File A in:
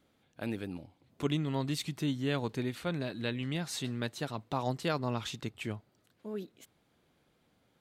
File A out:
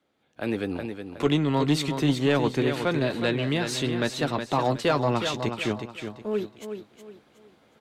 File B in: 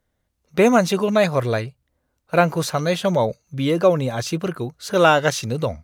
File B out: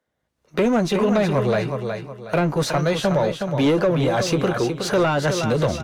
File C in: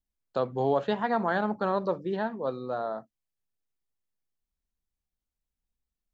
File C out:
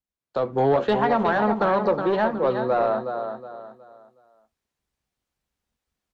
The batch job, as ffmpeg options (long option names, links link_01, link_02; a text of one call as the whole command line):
ffmpeg -i in.wav -filter_complex "[0:a]acrossover=split=300[link_01][link_02];[link_01]aeval=exprs='max(val(0),0)':channel_layout=same[link_03];[link_02]acompressor=threshold=-27dB:ratio=6[link_04];[link_03][link_04]amix=inputs=2:normalize=0,highpass=frequency=100:poles=1,highshelf=frequency=4400:gain=7,asplit=2[link_05][link_06];[link_06]adelay=14,volume=-13dB[link_07];[link_05][link_07]amix=inputs=2:normalize=0,aecho=1:1:367|734|1101|1468:0.376|0.12|0.0385|0.0123,dynaudnorm=framelen=160:gausssize=5:maxgain=12.5dB,asoftclip=type=tanh:threshold=-12dB,aemphasis=mode=reproduction:type=75kf" out.wav